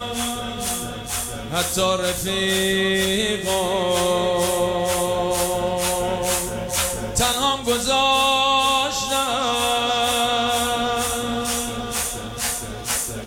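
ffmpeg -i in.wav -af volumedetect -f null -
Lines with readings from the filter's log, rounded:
mean_volume: -21.7 dB
max_volume: -7.3 dB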